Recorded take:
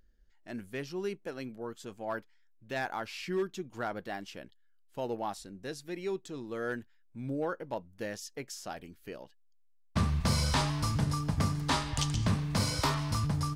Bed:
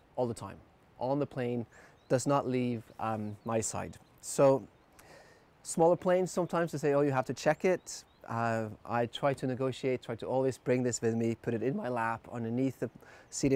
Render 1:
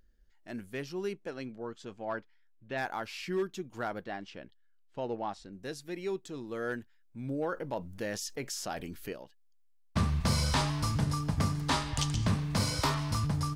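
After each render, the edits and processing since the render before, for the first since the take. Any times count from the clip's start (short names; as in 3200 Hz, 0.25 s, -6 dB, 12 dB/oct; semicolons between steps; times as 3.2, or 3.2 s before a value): 1.13–2.77 LPF 8600 Hz -> 3200 Hz; 4.04–5.53 air absorption 110 m; 7.52–9.13 fast leveller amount 50%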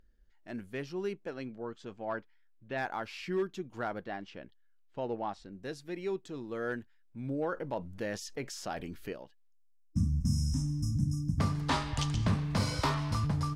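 9.51–11.39 spectral gain 320–5100 Hz -30 dB; high shelf 5800 Hz -10 dB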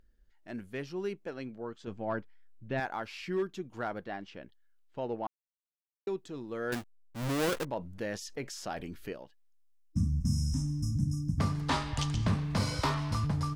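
1.87–2.8 low shelf 280 Hz +10.5 dB; 5.27–6.07 mute; 6.72–7.65 half-waves squared off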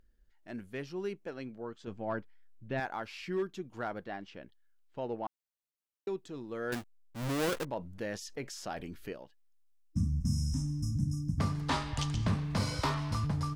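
gain -1.5 dB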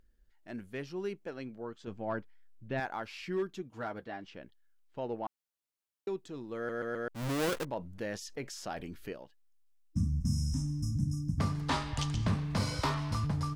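3.62–4.24 notch comb 180 Hz; 6.56 stutter in place 0.13 s, 4 plays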